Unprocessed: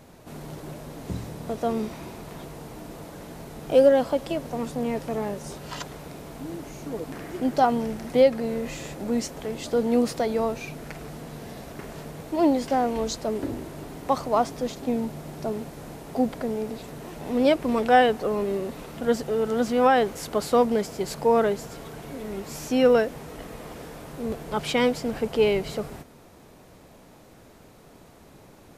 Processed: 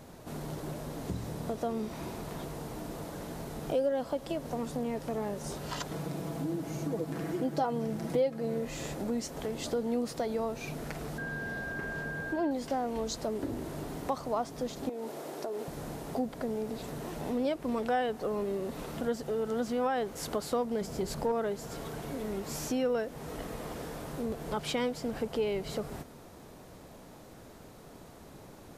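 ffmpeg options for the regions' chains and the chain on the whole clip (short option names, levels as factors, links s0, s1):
-filter_complex "[0:a]asettb=1/sr,asplit=3[s0][s1][s2];[s0]atrim=end=5.914[s3];[s1]atrim=start=5.91:end=8.65,asetpts=PTS-STARTPTS,afade=t=in:d=0.004:c=qsin,afade=t=out:st=2.736:d=0.004:c=qsin,highpass=110,lowshelf=f=400:g=7,aecho=1:1:6.1:0.52,atrim=end_sample=120834[s4];[s2]atrim=start=8.646[s5];[s3][s4]acrossfade=d=0.004:c1=hsin:c2=qsin[s6];[s6][s5]acrossfade=d=0.004:c1=qsin:c2=hsin,asettb=1/sr,asplit=3[s7][s8][s9];[s7]atrim=end=11.184[s10];[s8]atrim=start=11.18:end=12.51,asetpts=PTS-STARTPTS,afade=t=in:d=0.004:c=qsin,afade=t=out:st=1.326:d=0.004:c=qsin,highshelf=f=3900:g=-8.5,aeval=exprs='val(0)+0.0178*sin(2*PI*1600*n/s)':c=same[s11];[s9]atrim=start=12.506[s12];[s10][s11]acrossfade=d=0.004:c1=hsin:c2=qsin[s13];[s13][s12]acrossfade=d=0.004:c1=qsin:c2=hsin,asettb=1/sr,asplit=3[s14][s15][s16];[s14]atrim=end=14.894[s17];[s15]atrim=start=14.89:end=15.68,asetpts=PTS-STARTPTS,afade=t=in:d=0.004:c=qsin,afade=t=out:st=0.786:d=0.004:c=qsin,highpass=120,lowshelf=f=260:t=q:w=1.5:g=-12,acompressor=threshold=0.0316:ratio=5:attack=3.2:release=140:knee=1:detection=peak[s18];[s16]atrim=start=15.676[s19];[s17][s18]acrossfade=d=0.004:c1=hsin:c2=qsin[s20];[s20][s19]acrossfade=d=0.004:c1=qsin:c2=hsin,asettb=1/sr,asplit=3[s21][s22][s23];[s21]atrim=end=20.814[s24];[s22]atrim=start=20.81:end=21.32,asetpts=PTS-STARTPTS,afade=t=in:d=0.004:c=qsin,afade=t=out:st=0.506:d=0.004:c=qsin,lowshelf=f=240:g=9.5,aeval=exprs='clip(val(0),-1,0.158)':c=same,bandreject=f=50:t=h:w=6,bandreject=f=100:t=h:w=6,bandreject=f=150:t=h:w=6,bandreject=f=200:t=h:w=6,bandreject=f=250:t=h:w=6,bandreject=f=300:t=h:w=6,bandreject=f=350:t=h:w=6,bandreject=f=400:t=h:w=6,bandreject=f=450:t=h:w=6[s25];[s23]atrim=start=21.316[s26];[s24][s25]acrossfade=d=0.004:c1=hsin:c2=qsin[s27];[s27][s26]acrossfade=d=0.004:c1=qsin:c2=hsin,equalizer=f=2400:t=o:w=0.65:g=-3,acompressor=threshold=0.0224:ratio=2.5"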